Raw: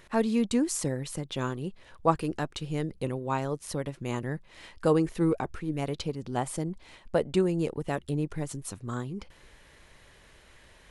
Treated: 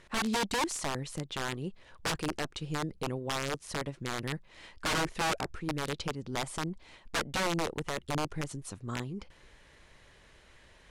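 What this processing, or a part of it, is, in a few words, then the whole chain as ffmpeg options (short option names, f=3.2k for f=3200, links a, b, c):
overflowing digital effects unit: -af "aeval=exprs='(mod(12.6*val(0)+1,2)-1)/12.6':c=same,lowpass=8.9k,volume=-2.5dB"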